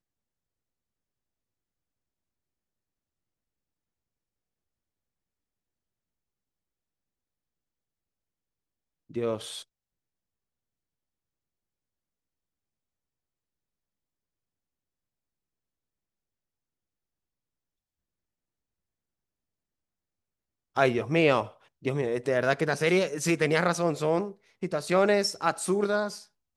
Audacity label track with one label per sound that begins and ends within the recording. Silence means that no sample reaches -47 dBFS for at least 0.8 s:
9.100000	9.630000	sound